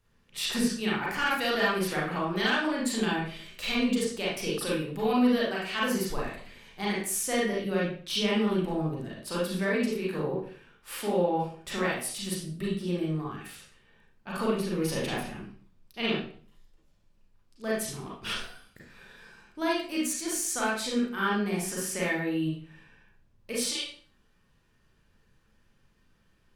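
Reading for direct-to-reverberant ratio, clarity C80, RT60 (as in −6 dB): −6.0 dB, 7.0 dB, 0.45 s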